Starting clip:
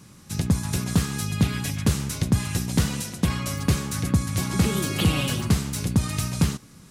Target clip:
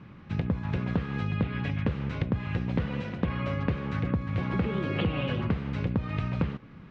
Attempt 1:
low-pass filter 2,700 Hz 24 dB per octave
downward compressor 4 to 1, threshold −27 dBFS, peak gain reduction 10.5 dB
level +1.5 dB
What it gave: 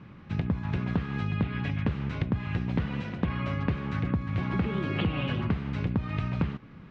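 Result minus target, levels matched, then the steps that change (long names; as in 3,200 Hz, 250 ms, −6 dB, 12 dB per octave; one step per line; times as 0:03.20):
500 Hz band −2.5 dB
add after low-pass filter: dynamic equaliser 510 Hz, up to +8 dB, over −51 dBFS, Q 4.6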